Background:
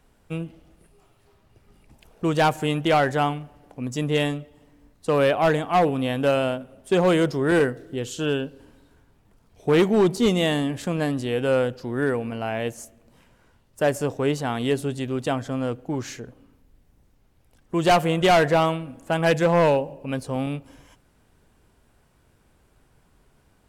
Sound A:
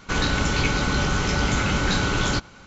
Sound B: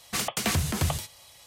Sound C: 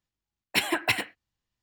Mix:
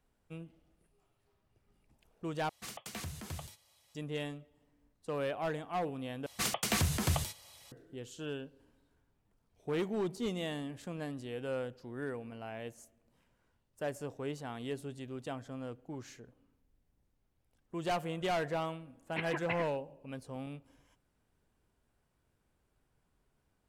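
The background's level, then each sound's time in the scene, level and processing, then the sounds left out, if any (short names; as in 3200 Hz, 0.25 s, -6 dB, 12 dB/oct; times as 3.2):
background -16 dB
2.49 replace with B -16.5 dB
6.26 replace with B -4.5 dB
18.61 add C -11 dB + LPF 2500 Hz 24 dB/oct
not used: A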